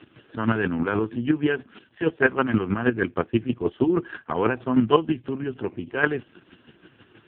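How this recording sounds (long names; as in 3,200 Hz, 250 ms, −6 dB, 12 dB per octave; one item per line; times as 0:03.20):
chopped level 6.3 Hz, depth 60%, duty 25%
AMR narrowband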